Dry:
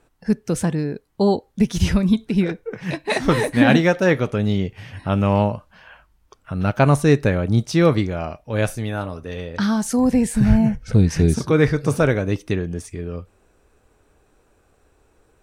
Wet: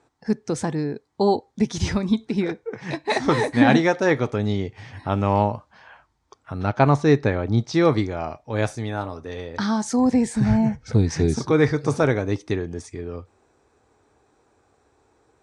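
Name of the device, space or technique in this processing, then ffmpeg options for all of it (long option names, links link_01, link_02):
car door speaker: -filter_complex "[0:a]asettb=1/sr,asplit=3[link_01][link_02][link_03];[link_01]atrim=end=6.664[link_04];[link_02]atrim=start=6.66:end=7.74,asetpts=PTS-STARTPTS,afade=type=in:duration=0.004:curve=qsin,afade=type=out:start_time=1.076:duration=0.004:curve=qsin,lowpass=5200[link_05];[link_03]atrim=start=7.736[link_06];[link_04][link_05]acrossfade=duration=0.004:curve1=hsin:curve2=qsin[link_07];[link_07][link_06]acrossfade=duration=0.004:curve1=qsin:curve2=hsin,highpass=100,equalizer=frequency=180:width_type=q:width=4:gain=-9,equalizer=frequency=560:width_type=q:width=4:gain=-4,equalizer=frequency=840:width_type=q:width=4:gain=4,equalizer=frequency=1500:width_type=q:width=4:gain=-3,equalizer=frequency=2800:width_type=q:width=4:gain=-8,lowpass=frequency=7700:width=0.5412,lowpass=frequency=7700:width=1.3066"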